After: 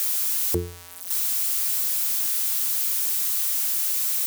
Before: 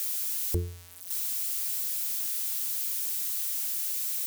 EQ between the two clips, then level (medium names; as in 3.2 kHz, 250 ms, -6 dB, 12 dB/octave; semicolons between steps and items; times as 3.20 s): high-pass 130 Hz 12 dB/octave; peaking EQ 1 kHz +5.5 dB 1.5 oct; +7.0 dB